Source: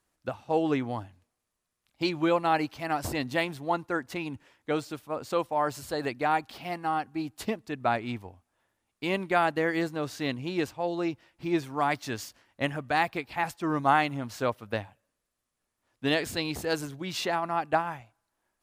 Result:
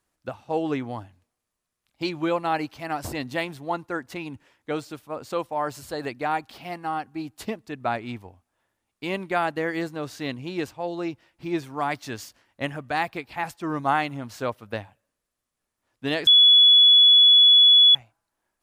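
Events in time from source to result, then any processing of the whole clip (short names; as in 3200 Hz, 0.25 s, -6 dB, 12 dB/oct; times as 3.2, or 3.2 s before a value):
7.81–9.28 short-mantissa float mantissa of 8-bit
16.27–17.95 bleep 3400 Hz -10.5 dBFS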